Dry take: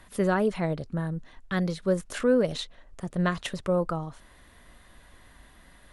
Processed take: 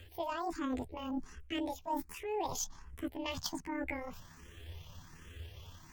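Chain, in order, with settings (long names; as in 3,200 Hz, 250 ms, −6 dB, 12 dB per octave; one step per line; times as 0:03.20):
pitch shift by two crossfaded delay taps +9 semitones
reversed playback
downward compressor 10 to 1, threshold −34 dBFS, peak gain reduction 16.5 dB
reversed playback
parametric band 92 Hz +7 dB 1.9 octaves
frequency shifter mixed with the dry sound +1.3 Hz
level +3 dB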